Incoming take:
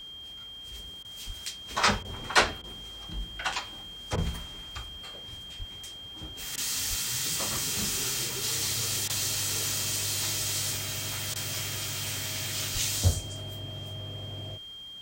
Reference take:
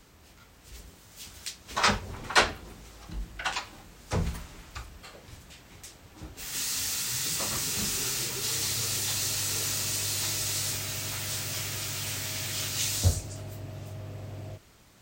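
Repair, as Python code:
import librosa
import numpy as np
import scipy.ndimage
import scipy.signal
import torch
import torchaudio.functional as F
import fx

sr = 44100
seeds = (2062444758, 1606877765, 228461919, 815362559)

y = fx.notch(x, sr, hz=3200.0, q=30.0)
y = fx.fix_deplosive(y, sr, at_s=(1.26, 5.58, 6.89, 12.73))
y = fx.fix_interpolate(y, sr, at_s=(1.03, 2.03, 2.62, 4.16, 6.56, 9.08, 11.34), length_ms=16.0)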